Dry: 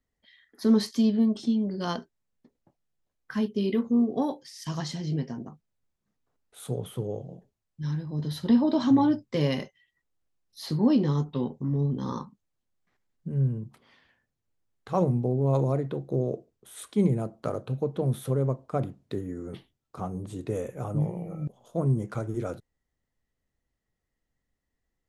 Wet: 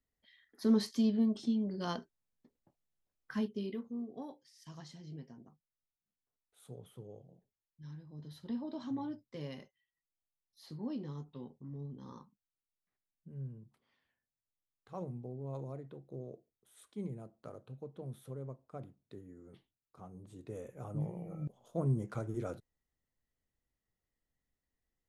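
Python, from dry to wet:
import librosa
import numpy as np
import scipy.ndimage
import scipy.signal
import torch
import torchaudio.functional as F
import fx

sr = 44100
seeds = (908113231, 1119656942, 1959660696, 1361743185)

y = fx.gain(x, sr, db=fx.line((3.39, -7.0), (3.91, -18.0), (20.01, -18.0), (21.41, -7.0)))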